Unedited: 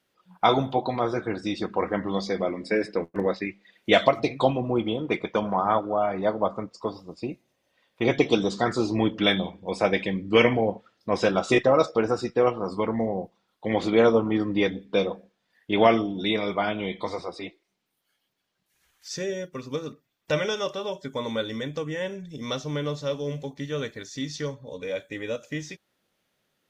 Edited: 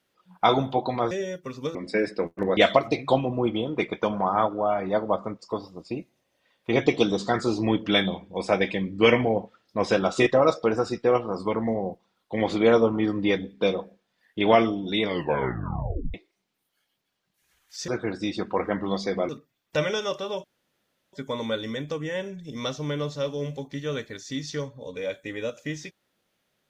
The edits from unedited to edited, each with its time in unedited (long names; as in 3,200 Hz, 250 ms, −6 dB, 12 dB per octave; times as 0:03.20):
0:01.11–0:02.52: swap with 0:19.20–0:19.84
0:03.34–0:03.89: remove
0:16.35: tape stop 1.11 s
0:20.99: splice in room tone 0.69 s